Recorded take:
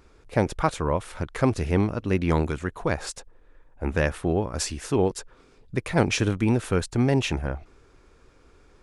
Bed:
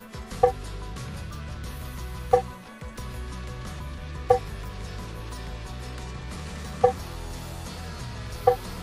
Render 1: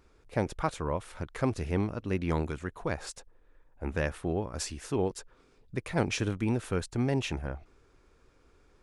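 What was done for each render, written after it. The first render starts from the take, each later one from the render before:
level −7 dB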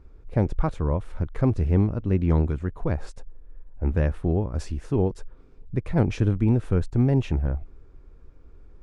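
spectral tilt −3.5 dB per octave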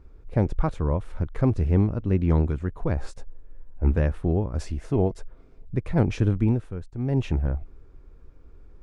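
0:02.95–0:03.99: double-tracking delay 15 ms −4 dB
0:04.61–0:05.76: hollow resonant body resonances 660/2,100 Hz, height 9 dB
0:06.45–0:07.23: duck −11.5 dB, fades 0.25 s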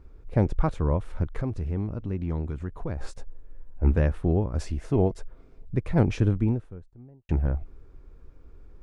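0:01.40–0:03.01: downward compressor 2 to 1, threshold −31 dBFS
0:04.18–0:04.68: floating-point word with a short mantissa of 8 bits
0:06.07–0:07.29: fade out and dull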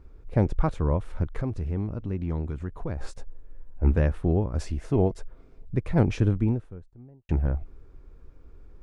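no processing that can be heard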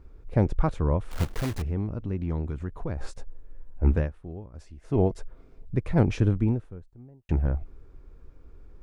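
0:01.11–0:01.63: one scale factor per block 3 bits
0:03.95–0:04.98: duck −15.5 dB, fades 0.16 s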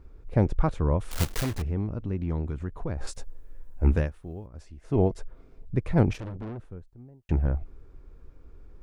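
0:00.99–0:01.42: high-shelf EQ 3,700 Hz → 2,500 Hz +11.5 dB
0:03.07–0:04.47: high-shelf EQ 3,300 Hz +10.5 dB
0:06.13–0:06.61: tube saturation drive 34 dB, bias 0.7

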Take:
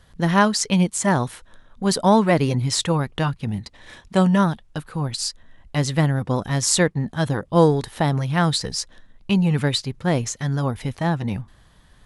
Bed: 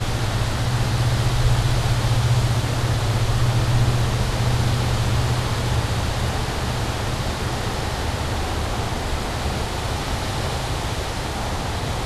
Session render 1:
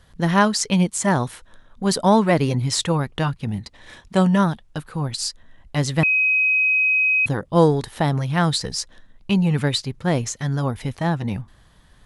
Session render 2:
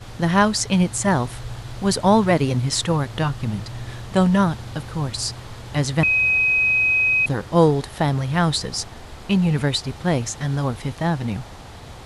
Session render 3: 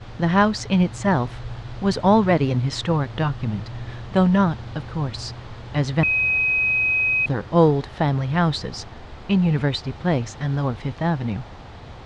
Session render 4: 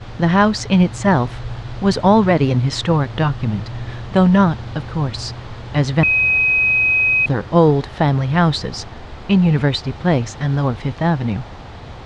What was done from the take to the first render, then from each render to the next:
0:06.03–0:07.26: beep over 2,530 Hz −15 dBFS
mix in bed −14.5 dB
high-frequency loss of the air 150 metres
level +5 dB; brickwall limiter −3 dBFS, peak gain reduction 3 dB

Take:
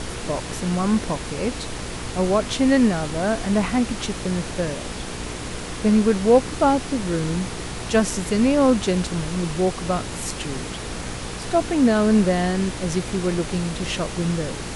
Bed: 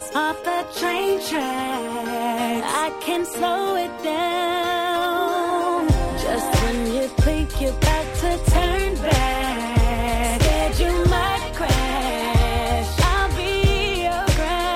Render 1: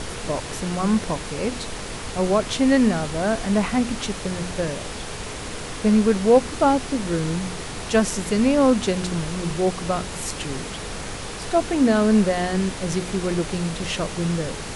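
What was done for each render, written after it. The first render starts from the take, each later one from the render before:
hum removal 60 Hz, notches 6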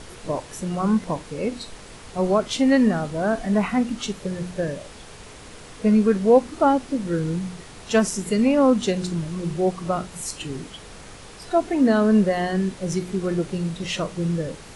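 noise reduction from a noise print 10 dB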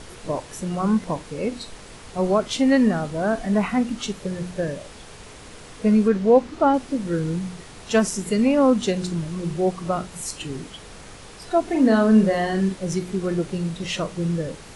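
0:06.08–0:06.74: high-frequency loss of the air 60 metres
0:11.63–0:12.76: double-tracking delay 41 ms −6 dB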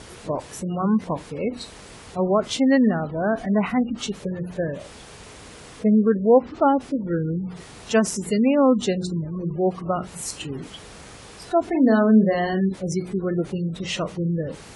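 high-pass filter 43 Hz 12 dB per octave
gate on every frequency bin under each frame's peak −30 dB strong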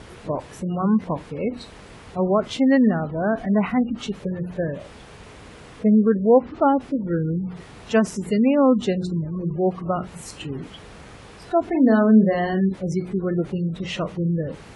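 bass and treble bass +2 dB, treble −9 dB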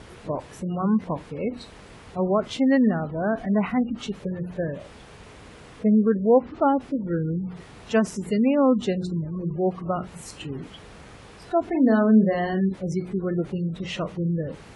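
level −2.5 dB

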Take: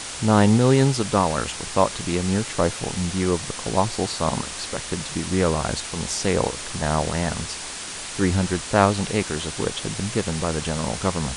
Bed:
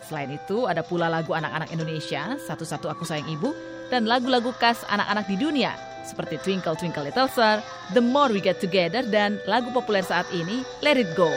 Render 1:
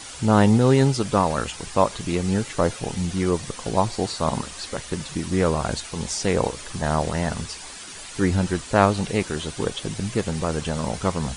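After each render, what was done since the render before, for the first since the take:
broadband denoise 9 dB, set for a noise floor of −34 dBFS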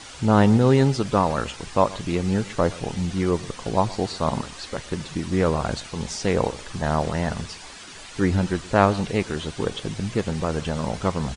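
high-frequency loss of the air 63 metres
slap from a distant wall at 21 metres, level −20 dB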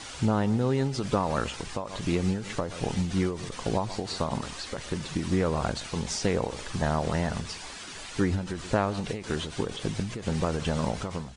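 downward compressor 12 to 1, threshold −20 dBFS, peak gain reduction 11 dB
every ending faded ahead of time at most 100 dB per second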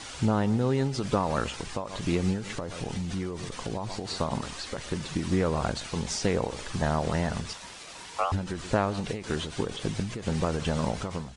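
0:02.43–0:04.10: downward compressor 4 to 1, threshold −28 dBFS
0:07.53–0:08.32: ring modulation 950 Hz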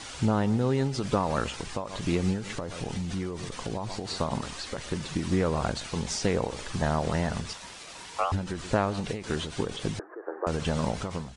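0:09.99–0:10.47: Chebyshev band-pass filter 320–1,700 Hz, order 5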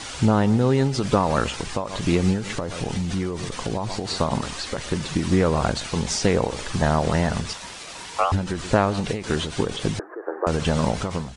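level +6.5 dB

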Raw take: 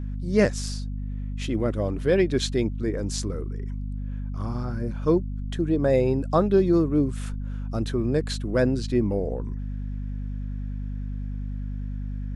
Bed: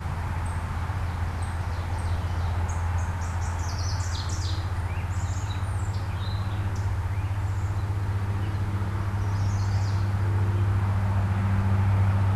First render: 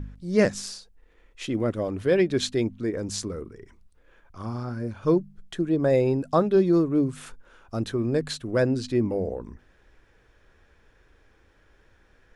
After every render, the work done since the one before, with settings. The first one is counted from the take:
hum removal 50 Hz, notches 5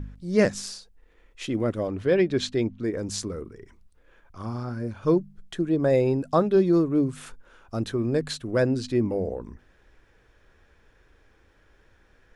0:01.87–0:02.84: high-frequency loss of the air 57 metres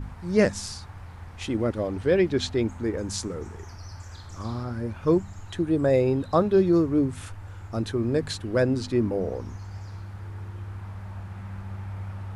mix in bed −13 dB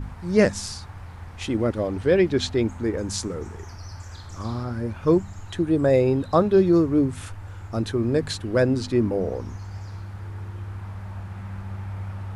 level +2.5 dB

